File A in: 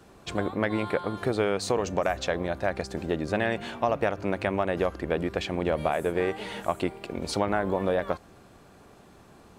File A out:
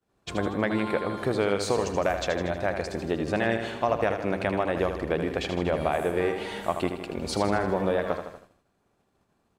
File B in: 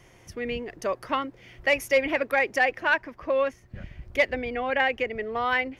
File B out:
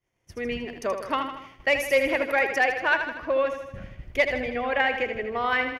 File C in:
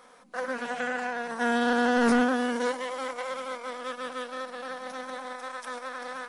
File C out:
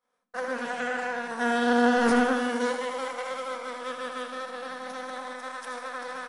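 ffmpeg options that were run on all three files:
-af "aecho=1:1:79|158|237|316|395|474|553:0.398|0.227|0.129|0.0737|0.042|0.024|0.0137,agate=range=0.0224:threshold=0.0112:ratio=3:detection=peak"

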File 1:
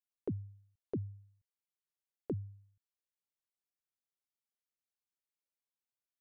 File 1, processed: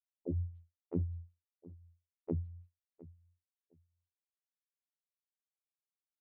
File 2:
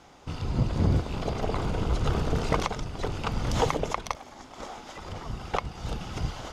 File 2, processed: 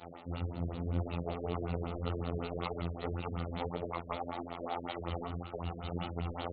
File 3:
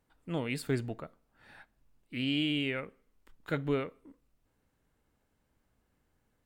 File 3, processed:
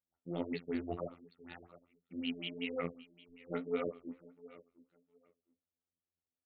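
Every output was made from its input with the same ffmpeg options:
-af "bandreject=f=990:w=6.7,agate=range=0.0224:threshold=0.00224:ratio=3:detection=peak,highpass=58,lowshelf=f=190:g=-6,aeval=exprs='0.282*(cos(1*acos(clip(val(0)/0.282,-1,1)))-cos(1*PI/2))+0.0794*(cos(5*acos(clip(val(0)/0.282,-1,1)))-cos(5*PI/2))':c=same,areverse,acompressor=threshold=0.0158:ratio=10,areverse,equalizer=f=1600:w=7.9:g=-12,afftfilt=real='hypot(re,im)*cos(PI*b)':imag='0':win_size=2048:overlap=0.75,flanger=delay=8.3:depth=8.3:regen=27:speed=1.8:shape=triangular,aecho=1:1:709|1418:0.112|0.0202,afftfilt=real='re*lt(b*sr/1024,580*pow(4600/580,0.5+0.5*sin(2*PI*5.3*pts/sr)))':imag='im*lt(b*sr/1024,580*pow(4600/580,0.5+0.5*sin(2*PI*5.3*pts/sr)))':win_size=1024:overlap=0.75,volume=2.99"

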